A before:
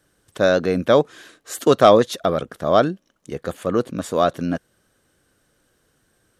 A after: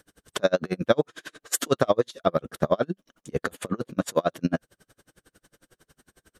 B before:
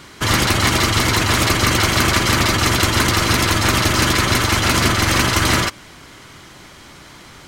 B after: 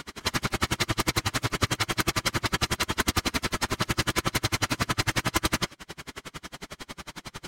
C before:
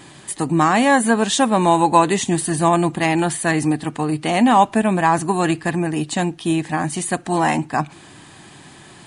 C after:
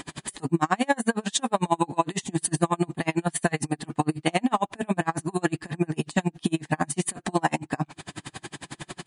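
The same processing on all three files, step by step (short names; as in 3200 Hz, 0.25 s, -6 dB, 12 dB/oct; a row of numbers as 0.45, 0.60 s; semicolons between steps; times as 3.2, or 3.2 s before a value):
compressor 3:1, threshold -28 dBFS; flange 0.31 Hz, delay 4.1 ms, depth 3 ms, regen -58%; dB-linear tremolo 11 Hz, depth 37 dB; match loudness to -27 LUFS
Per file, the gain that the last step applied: +15.0, +10.5, +13.5 dB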